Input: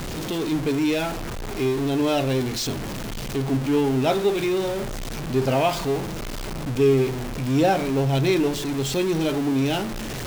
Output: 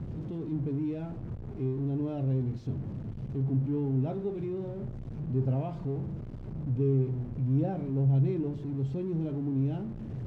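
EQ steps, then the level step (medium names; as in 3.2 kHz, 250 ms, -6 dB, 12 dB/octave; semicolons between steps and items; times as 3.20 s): band-pass filter 110 Hz, Q 1.3; 0.0 dB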